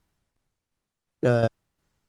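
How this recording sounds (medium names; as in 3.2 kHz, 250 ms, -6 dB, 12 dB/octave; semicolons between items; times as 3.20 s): tremolo saw down 2.8 Hz, depth 55%; Opus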